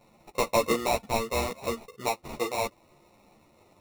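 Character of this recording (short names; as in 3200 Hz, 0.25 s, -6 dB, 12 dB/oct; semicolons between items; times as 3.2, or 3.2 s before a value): aliases and images of a low sample rate 1600 Hz, jitter 0%; a shimmering, thickened sound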